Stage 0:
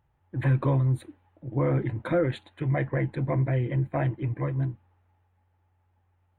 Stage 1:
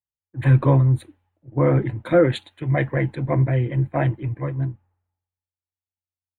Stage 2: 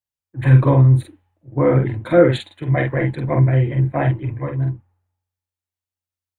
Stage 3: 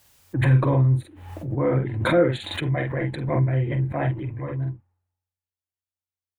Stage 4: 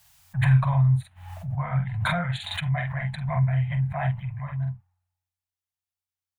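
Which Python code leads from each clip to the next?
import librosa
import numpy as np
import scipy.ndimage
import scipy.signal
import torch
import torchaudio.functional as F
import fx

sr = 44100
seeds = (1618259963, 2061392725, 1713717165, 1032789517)

y1 = fx.band_widen(x, sr, depth_pct=100)
y1 = y1 * librosa.db_to_amplitude(5.5)
y2 = fx.doubler(y1, sr, ms=46.0, db=-4.0)
y2 = y2 * librosa.db_to_amplitude(1.5)
y3 = fx.pre_swell(y2, sr, db_per_s=53.0)
y3 = y3 * librosa.db_to_amplitude(-7.0)
y4 = scipy.signal.sosfilt(scipy.signal.ellip(3, 1.0, 40, [180.0, 690.0], 'bandstop', fs=sr, output='sos'), y3)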